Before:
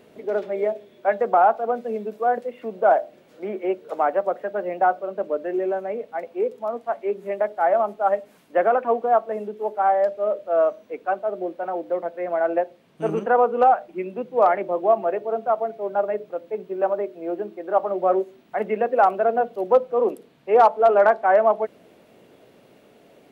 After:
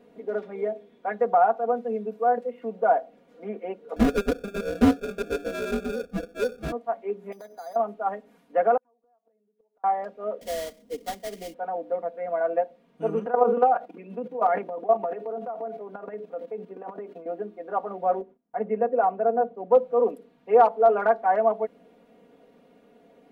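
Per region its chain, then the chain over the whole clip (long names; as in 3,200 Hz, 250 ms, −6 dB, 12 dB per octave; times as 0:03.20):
0:03.96–0:06.72: sample-rate reduction 1,000 Hz + low-shelf EQ 180 Hz +9 dB + highs frequency-modulated by the lows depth 0.4 ms
0:07.32–0:07.76: downward compressor 4 to 1, threshold −34 dBFS + bad sample-rate conversion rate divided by 8×, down filtered, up hold
0:08.77–0:09.84: downward compressor 4 to 1, threshold −30 dBFS + gate with flip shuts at −30 dBFS, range −35 dB
0:10.41–0:11.54: sample-rate reduction 2,600 Hz, jitter 20% + parametric band 1,300 Hz −14 dB 2 octaves + multiband upward and downward compressor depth 100%
0:13.25–0:17.26: output level in coarse steps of 15 dB + transient designer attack +2 dB, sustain +11 dB + high-pass filter 160 Hz 24 dB per octave
0:18.21–0:19.71: low-pass filter 1,200 Hz 6 dB per octave + noise gate −49 dBFS, range −20 dB + one half of a high-frequency compander decoder only
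whole clip: high-shelf EQ 2,300 Hz −9.5 dB; comb filter 4.2 ms, depth 89%; level −5.5 dB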